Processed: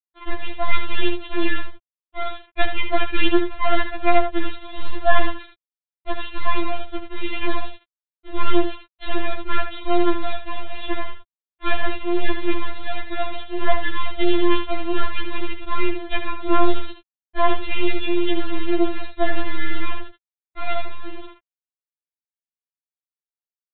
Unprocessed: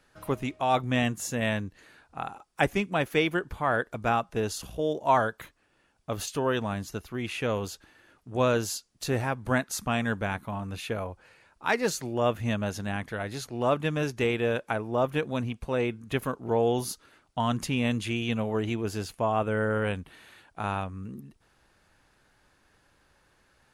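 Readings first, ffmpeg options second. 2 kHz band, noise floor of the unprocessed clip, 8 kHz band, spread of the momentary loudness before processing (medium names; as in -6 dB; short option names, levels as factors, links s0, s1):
+4.5 dB, -67 dBFS, under -40 dB, 12 LU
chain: -af "aeval=exprs='if(lt(val(0),0),0.447*val(0),val(0))':c=same,agate=range=0.0224:threshold=0.00178:ratio=3:detection=peak,acontrast=57,aresample=8000,acrusher=bits=3:dc=4:mix=0:aa=0.000001,aresample=44100,aecho=1:1:77:0.376,afftfilt=real='re*4*eq(mod(b,16),0)':imag='im*4*eq(mod(b,16),0)':win_size=2048:overlap=0.75,volume=1.78"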